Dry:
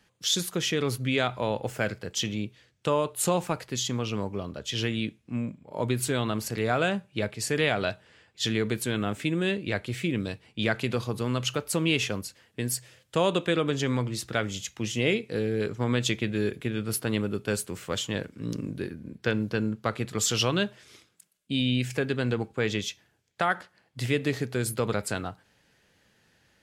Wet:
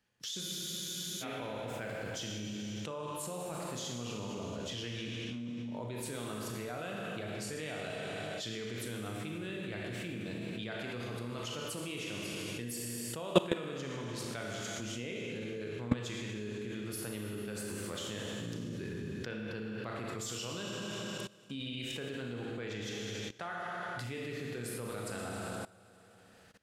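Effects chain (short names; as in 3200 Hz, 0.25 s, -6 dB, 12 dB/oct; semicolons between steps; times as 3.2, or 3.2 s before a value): Schroeder reverb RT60 2.2 s, combs from 26 ms, DRR -0.5 dB; level quantiser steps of 20 dB; spectral freeze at 0.44, 0.77 s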